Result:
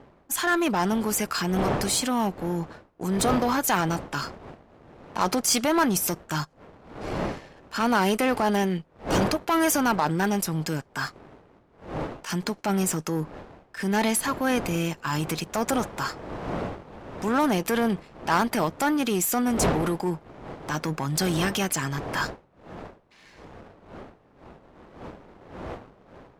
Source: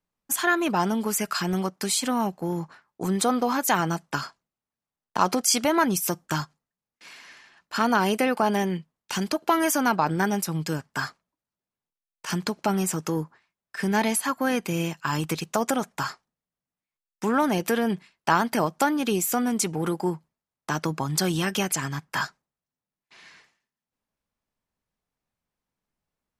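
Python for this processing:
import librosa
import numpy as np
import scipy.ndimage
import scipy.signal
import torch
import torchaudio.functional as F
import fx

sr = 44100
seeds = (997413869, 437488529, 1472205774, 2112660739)

y = fx.dmg_wind(x, sr, seeds[0], corner_hz=640.0, level_db=-37.0)
y = fx.leveller(y, sr, passes=1)
y = fx.transient(y, sr, attack_db=-4, sustain_db=2)
y = fx.cheby_harmonics(y, sr, harmonics=(6, 8), levels_db=(-19, -20), full_scale_db=-8.5)
y = F.gain(torch.from_numpy(y), -3.0).numpy()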